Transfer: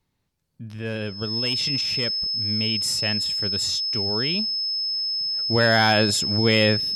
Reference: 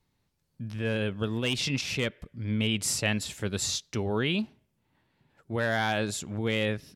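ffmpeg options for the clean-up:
ffmpeg -i in.wav -af "bandreject=frequency=5200:width=30,asetnsamples=nb_out_samples=441:pad=0,asendcmd='4.76 volume volume -9dB',volume=0dB" out.wav

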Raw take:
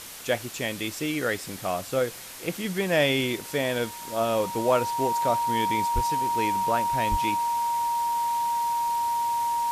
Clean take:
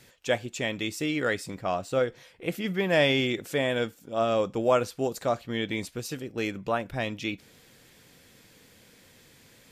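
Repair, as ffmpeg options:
ffmpeg -i in.wav -filter_complex "[0:a]bandreject=frequency=940:width=30,asplit=3[link_01][link_02][link_03];[link_01]afade=type=out:start_time=5.94:duration=0.02[link_04];[link_02]highpass=frequency=140:width=0.5412,highpass=frequency=140:width=1.3066,afade=type=in:start_time=5.94:duration=0.02,afade=type=out:start_time=6.06:duration=0.02[link_05];[link_03]afade=type=in:start_time=6.06:duration=0.02[link_06];[link_04][link_05][link_06]amix=inputs=3:normalize=0,asplit=3[link_07][link_08][link_09];[link_07]afade=type=out:start_time=7.1:duration=0.02[link_10];[link_08]highpass=frequency=140:width=0.5412,highpass=frequency=140:width=1.3066,afade=type=in:start_time=7.1:duration=0.02,afade=type=out:start_time=7.22:duration=0.02[link_11];[link_09]afade=type=in:start_time=7.22:duration=0.02[link_12];[link_10][link_11][link_12]amix=inputs=3:normalize=0,afftdn=noise_reduction=17:noise_floor=-39" out.wav

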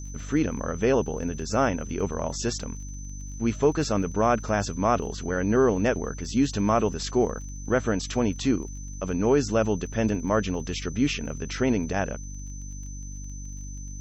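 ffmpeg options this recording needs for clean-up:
ffmpeg -i in.wav -af "adeclick=threshold=4,bandreject=frequency=48.8:width_type=h:width=4,bandreject=frequency=97.6:width_type=h:width=4,bandreject=frequency=146.4:width_type=h:width=4,bandreject=frequency=195.2:width_type=h:width=4,bandreject=frequency=244:width_type=h:width=4,bandreject=frequency=292.8:width_type=h:width=4,bandreject=frequency=6100:width=30" out.wav

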